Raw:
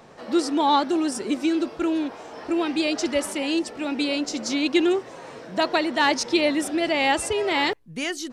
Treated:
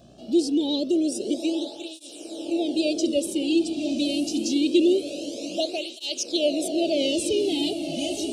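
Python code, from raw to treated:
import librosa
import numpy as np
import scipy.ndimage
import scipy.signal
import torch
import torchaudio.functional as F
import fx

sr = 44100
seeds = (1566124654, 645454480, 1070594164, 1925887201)

y = scipy.signal.sosfilt(scipy.signal.ellip(3, 1.0, 40, [630.0, 2900.0], 'bandstop', fs=sr, output='sos'), x)
y = fx.echo_diffused(y, sr, ms=1009, feedback_pct=57, wet_db=-7.5)
y = fx.dmg_buzz(y, sr, base_hz=60.0, harmonics=29, level_db=-55.0, tilt_db=-6, odd_only=False)
y = fx.flanger_cancel(y, sr, hz=0.25, depth_ms=2.2)
y = y * librosa.db_to_amplitude(2.5)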